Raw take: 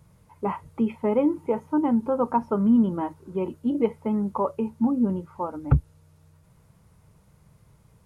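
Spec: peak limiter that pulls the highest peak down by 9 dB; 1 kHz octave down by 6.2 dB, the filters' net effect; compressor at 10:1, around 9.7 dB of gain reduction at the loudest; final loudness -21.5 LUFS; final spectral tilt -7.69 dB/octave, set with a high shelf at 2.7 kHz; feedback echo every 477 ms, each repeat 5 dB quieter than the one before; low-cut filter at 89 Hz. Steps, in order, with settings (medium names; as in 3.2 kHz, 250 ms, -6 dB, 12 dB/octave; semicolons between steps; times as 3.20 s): high-pass 89 Hz; peaking EQ 1 kHz -6.5 dB; treble shelf 2.7 kHz -5.5 dB; compression 10:1, threshold -25 dBFS; peak limiter -26 dBFS; feedback delay 477 ms, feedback 56%, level -5 dB; trim +12.5 dB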